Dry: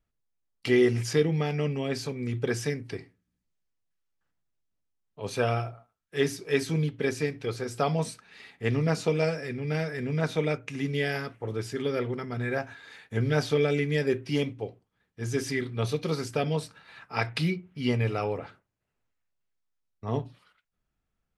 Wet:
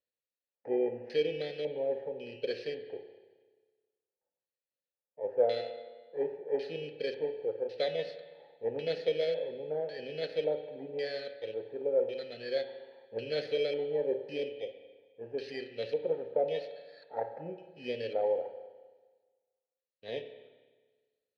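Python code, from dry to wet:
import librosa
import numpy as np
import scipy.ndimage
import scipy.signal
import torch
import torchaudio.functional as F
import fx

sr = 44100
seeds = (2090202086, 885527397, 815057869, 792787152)

y = fx.bit_reversed(x, sr, seeds[0], block=16)
y = fx.filter_lfo_lowpass(y, sr, shape='square', hz=0.91, low_hz=880.0, high_hz=4200.0, q=7.7)
y = fx.vowel_filter(y, sr, vowel='e')
y = fx.rev_spring(y, sr, rt60_s=1.4, pass_ms=(30, 53), chirp_ms=20, drr_db=8.5)
y = y * 10.0 ** (4.0 / 20.0)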